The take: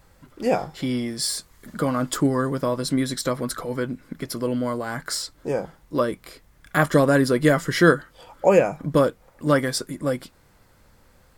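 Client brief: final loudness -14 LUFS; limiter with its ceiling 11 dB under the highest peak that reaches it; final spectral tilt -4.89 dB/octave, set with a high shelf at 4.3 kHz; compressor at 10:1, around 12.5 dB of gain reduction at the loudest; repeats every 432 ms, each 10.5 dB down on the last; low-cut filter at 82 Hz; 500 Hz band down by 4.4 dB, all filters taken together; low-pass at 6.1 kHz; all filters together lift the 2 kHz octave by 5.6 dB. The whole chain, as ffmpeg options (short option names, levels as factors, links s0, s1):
-af "highpass=82,lowpass=6100,equalizer=f=500:t=o:g=-5.5,equalizer=f=2000:t=o:g=9,highshelf=f=4300:g=-6,acompressor=threshold=0.0708:ratio=10,alimiter=limit=0.0841:level=0:latency=1,aecho=1:1:432|864|1296:0.299|0.0896|0.0269,volume=8.41"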